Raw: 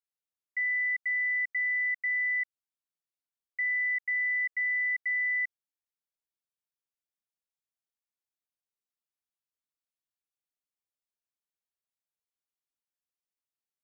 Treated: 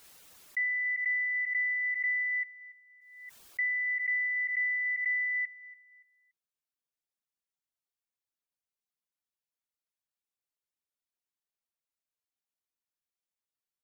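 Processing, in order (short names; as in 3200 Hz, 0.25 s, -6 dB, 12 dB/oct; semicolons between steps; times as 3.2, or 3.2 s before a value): reverb removal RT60 0.74 s; feedback echo 0.286 s, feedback 31%, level -19 dB; backwards sustainer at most 51 dB/s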